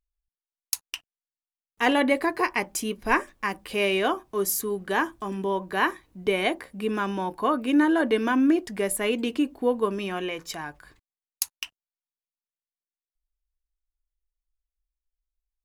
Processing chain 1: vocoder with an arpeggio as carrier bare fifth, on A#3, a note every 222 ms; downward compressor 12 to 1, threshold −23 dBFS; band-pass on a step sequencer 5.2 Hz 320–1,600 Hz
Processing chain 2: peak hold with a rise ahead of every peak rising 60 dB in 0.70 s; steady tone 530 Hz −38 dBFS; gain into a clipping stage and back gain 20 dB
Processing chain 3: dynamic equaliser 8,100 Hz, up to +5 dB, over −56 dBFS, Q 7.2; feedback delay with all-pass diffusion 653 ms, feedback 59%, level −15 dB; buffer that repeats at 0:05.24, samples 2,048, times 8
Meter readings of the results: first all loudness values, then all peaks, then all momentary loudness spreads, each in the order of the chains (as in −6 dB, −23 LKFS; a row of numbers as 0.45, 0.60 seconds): −41.0, −26.0, −26.0 LKFS; −22.5, −20.0, −5.5 dBFS; 10, 18, 16 LU